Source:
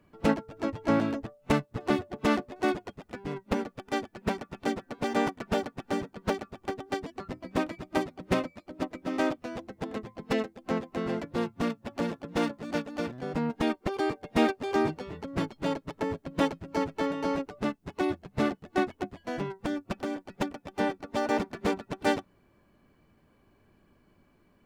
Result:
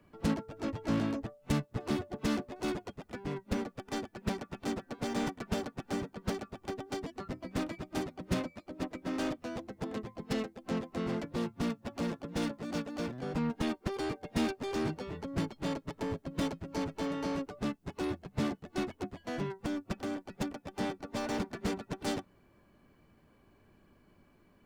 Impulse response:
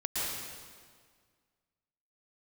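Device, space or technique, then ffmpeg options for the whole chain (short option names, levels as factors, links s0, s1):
one-band saturation: -filter_complex "[0:a]acrossover=split=230|3700[s0][s1][s2];[s1]asoftclip=type=tanh:threshold=0.0188[s3];[s0][s3][s2]amix=inputs=3:normalize=0"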